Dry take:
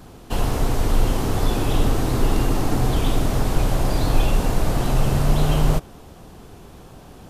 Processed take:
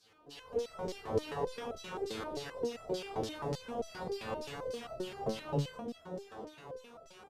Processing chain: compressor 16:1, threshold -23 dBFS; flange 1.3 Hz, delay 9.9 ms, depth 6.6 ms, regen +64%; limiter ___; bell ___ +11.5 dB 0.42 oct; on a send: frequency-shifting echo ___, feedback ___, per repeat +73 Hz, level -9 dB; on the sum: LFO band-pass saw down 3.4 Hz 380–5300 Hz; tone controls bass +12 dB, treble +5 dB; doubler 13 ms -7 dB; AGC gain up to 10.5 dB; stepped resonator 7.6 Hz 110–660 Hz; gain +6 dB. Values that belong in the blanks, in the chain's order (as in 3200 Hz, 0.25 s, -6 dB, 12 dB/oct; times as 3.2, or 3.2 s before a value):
-24.5 dBFS, 450 Hz, 0.205 s, 58%